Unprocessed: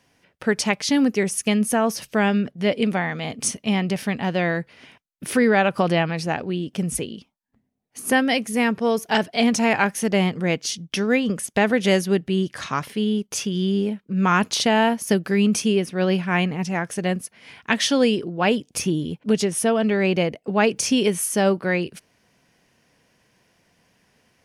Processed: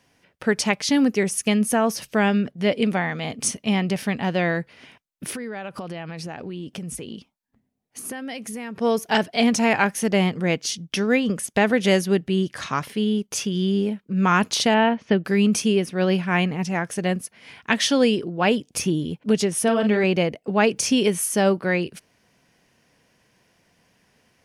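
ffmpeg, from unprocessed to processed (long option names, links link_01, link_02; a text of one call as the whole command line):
ffmpeg -i in.wav -filter_complex "[0:a]asettb=1/sr,asplit=3[link_01][link_02][link_03];[link_01]atrim=end=5.304[link_04];[link_02]atrim=start=5.3:end=8.76,asetpts=PTS-STARTPTS,afade=type=in:duration=0.004:curve=qsin,afade=type=out:start_time=3.456:duration=0.004:curve=qsin,acompressor=threshold=-29dB:ratio=8:attack=3.2:release=140:knee=1:detection=peak[link_05];[link_03]atrim=start=8.756[link_06];[link_04][link_05]acrossfade=duration=0.004:curve1=hsin:curve2=qsin[link_07];[link_07][link_06]acrossfade=duration=0.004:curve1=qsin:curve2=hsin,asettb=1/sr,asplit=3[link_08][link_09][link_10];[link_08]atrim=end=14.744[link_11];[link_09]atrim=start=14.74:end=15.25,asetpts=PTS-STARTPTS,afade=type=in:duration=0.004:curve=qsin,afade=type=out:start_time=0.506:duration=0.004:curve=qsin,lowpass=frequency=3400:width=0.5412,lowpass=frequency=3400:width=1.3066[link_12];[link_10]atrim=start=15.246[link_13];[link_11][link_12]acrossfade=duration=0.004:curve1=hsin:curve2=qsin[link_14];[link_14][link_13]acrossfade=duration=0.004:curve1=qsin:curve2=hsin,asettb=1/sr,asplit=3[link_15][link_16][link_17];[link_15]atrim=end=19.634[link_18];[link_16]atrim=start=19.63:end=20.04,asetpts=PTS-STARTPTS,afade=type=in:duration=0.004:curve=qsin,afade=type=out:start_time=0.406:duration=0.004:curve=qsin,asplit=2[link_19][link_20];[link_20]adelay=43,volume=-7.5dB[link_21];[link_19][link_21]amix=inputs=2:normalize=0,atrim=end_sample=18081[link_22];[link_17]atrim=start=20.036[link_23];[link_18][link_22]acrossfade=duration=0.004:curve1=hsin:curve2=qsin[link_24];[link_24][link_23]acrossfade=duration=0.004:curve1=qsin:curve2=hsin" out.wav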